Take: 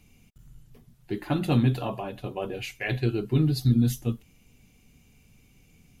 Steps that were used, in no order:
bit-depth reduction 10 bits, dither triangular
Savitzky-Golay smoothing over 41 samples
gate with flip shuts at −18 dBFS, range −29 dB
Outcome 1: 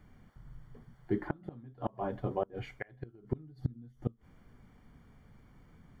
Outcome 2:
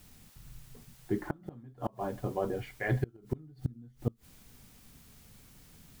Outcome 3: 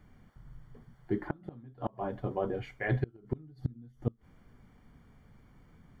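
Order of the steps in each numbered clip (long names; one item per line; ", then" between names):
bit-depth reduction, then gate with flip, then Savitzky-Golay smoothing
Savitzky-Golay smoothing, then bit-depth reduction, then gate with flip
bit-depth reduction, then Savitzky-Golay smoothing, then gate with flip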